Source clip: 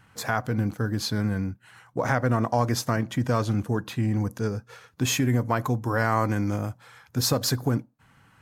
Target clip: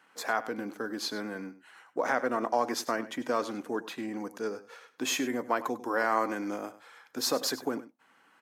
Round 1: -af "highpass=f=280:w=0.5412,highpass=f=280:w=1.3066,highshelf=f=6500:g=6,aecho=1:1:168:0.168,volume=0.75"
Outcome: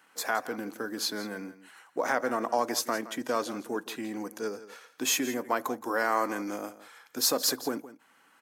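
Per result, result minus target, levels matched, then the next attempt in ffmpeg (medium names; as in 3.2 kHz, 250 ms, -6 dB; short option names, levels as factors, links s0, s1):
echo 69 ms late; 8 kHz band +4.5 dB
-af "highpass=f=280:w=0.5412,highpass=f=280:w=1.3066,highshelf=f=6500:g=6,aecho=1:1:99:0.168,volume=0.75"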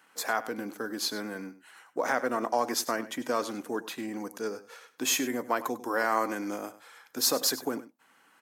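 8 kHz band +4.5 dB
-af "highpass=f=280:w=0.5412,highpass=f=280:w=1.3066,highshelf=f=6500:g=-5,aecho=1:1:99:0.168,volume=0.75"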